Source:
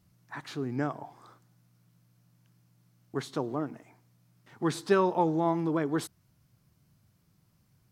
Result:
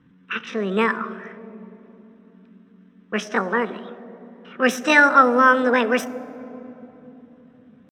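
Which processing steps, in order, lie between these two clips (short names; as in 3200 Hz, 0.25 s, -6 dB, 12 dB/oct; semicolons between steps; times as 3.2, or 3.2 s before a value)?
low-pass opened by the level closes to 1400 Hz, open at -22.5 dBFS; pitch shift +7.5 st; reverb RT60 3.4 s, pre-delay 3 ms, DRR 16 dB; gain +5 dB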